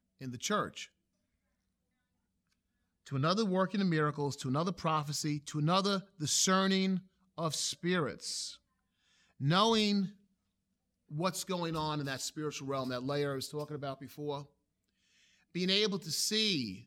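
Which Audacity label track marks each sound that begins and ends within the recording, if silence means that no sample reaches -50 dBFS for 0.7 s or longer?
3.060000	8.560000	sound
9.400000	10.120000	sound
11.110000	14.440000	sound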